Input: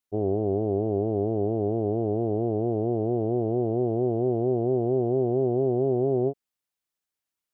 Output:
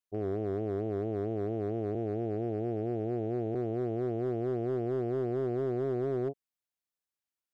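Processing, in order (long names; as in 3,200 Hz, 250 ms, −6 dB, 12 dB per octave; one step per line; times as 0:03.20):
0:01.95–0:03.55: Butterworth low-pass 1,100 Hz 96 dB per octave
hard clipping −17.5 dBFS, distortion −21 dB
level −7 dB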